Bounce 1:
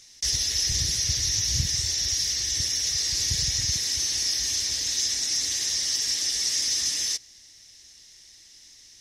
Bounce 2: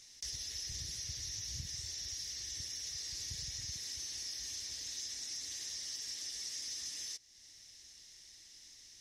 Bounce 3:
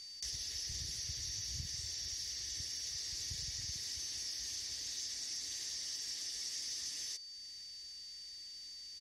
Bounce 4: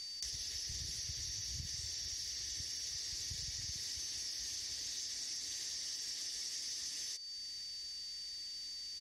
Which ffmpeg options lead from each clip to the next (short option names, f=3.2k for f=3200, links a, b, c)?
-af "acompressor=threshold=-43dB:ratio=2,volume=-6dB"
-af "aecho=1:1:479:0.1,aeval=exprs='val(0)+0.00398*sin(2*PI*4600*n/s)':c=same"
-af "acompressor=threshold=-45dB:ratio=3,volume=4.5dB"